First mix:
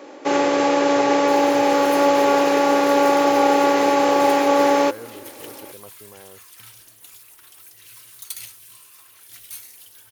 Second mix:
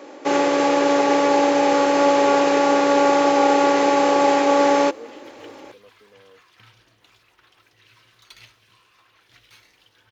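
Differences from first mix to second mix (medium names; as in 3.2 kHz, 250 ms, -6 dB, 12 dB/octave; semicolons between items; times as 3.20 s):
speech: add two resonant band-passes 350 Hz, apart 0.78 oct; second sound: add distance through air 220 m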